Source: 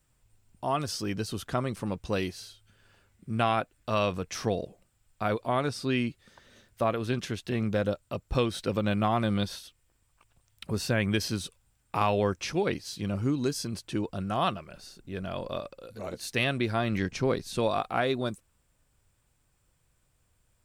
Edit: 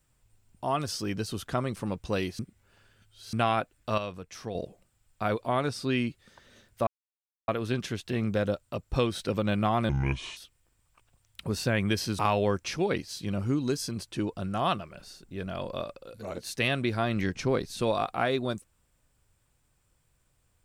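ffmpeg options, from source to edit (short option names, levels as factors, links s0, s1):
-filter_complex "[0:a]asplit=9[s0][s1][s2][s3][s4][s5][s6][s7][s8];[s0]atrim=end=2.392[s9];[s1]atrim=start=2.388:end=3.332,asetpts=PTS-STARTPTS,areverse[s10];[s2]atrim=start=3.328:end=3.982[s11];[s3]atrim=start=3.978:end=4.552,asetpts=PTS-STARTPTS,volume=0.376[s12];[s4]atrim=start=4.548:end=6.87,asetpts=PTS-STARTPTS,afade=t=out:st=2.318:d=0.004:c=hsin,apad=pad_dur=0.61[s13];[s5]atrim=start=6.87:end=9.284,asetpts=PTS-STARTPTS,afade=t=in:d=0.004:c=hsin[s14];[s6]atrim=start=9.28:end=9.6,asetpts=PTS-STARTPTS,asetrate=29547,aresample=44100[s15];[s7]atrim=start=9.596:end=11.422[s16];[s8]atrim=start=11.948[s17];[s9][s10]acrossfade=d=0.004:c1=hsin:c2=hsin[s18];[s18][s11]acrossfade=d=0.004:c1=hsin:c2=hsin[s19];[s19][s12]acrossfade=d=0.004:c1=hsin:c2=hsin[s20];[s13][s14]concat=n=2:v=0:a=1[s21];[s20][s21]acrossfade=d=0.004:c1=hsin:c2=hsin[s22];[s22][s15]acrossfade=d=0.004:c1=hsin:c2=hsin[s23];[s23][s16]acrossfade=d=0.004:c1=hsin:c2=hsin[s24];[s24][s17]acrossfade=d=0.004:c1=hsin:c2=hsin"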